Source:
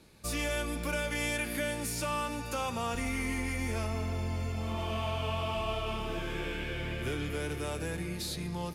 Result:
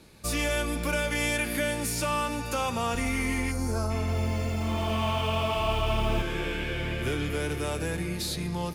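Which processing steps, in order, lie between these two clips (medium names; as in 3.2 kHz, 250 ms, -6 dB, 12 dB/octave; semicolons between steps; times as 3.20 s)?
3.51–3.91 s: time-frequency box 1.7–3.8 kHz -15 dB; 4.00–6.22 s: bit-crushed delay 82 ms, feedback 80%, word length 9-bit, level -8 dB; trim +5 dB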